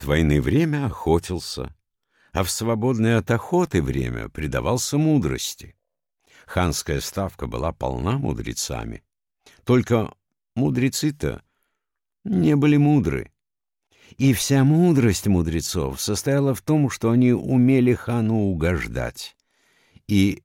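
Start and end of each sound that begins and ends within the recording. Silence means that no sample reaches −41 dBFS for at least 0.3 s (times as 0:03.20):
0:02.34–0:05.70
0:06.35–0:08.98
0:09.46–0:10.12
0:10.57–0:11.40
0:12.25–0:13.26
0:14.05–0:19.30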